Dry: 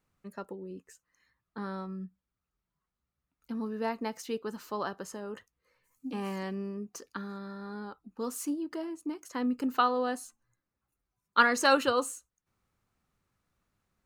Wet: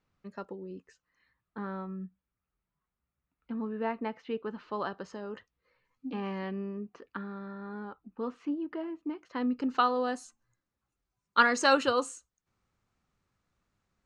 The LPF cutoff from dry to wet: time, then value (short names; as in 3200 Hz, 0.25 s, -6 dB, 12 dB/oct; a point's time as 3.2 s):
LPF 24 dB/oct
0.76 s 5800 Hz
1.68 s 3000 Hz
4.45 s 3000 Hz
5.18 s 5200 Hz
7.01 s 3000 Hz
9.07 s 3000 Hz
10.01 s 7900 Hz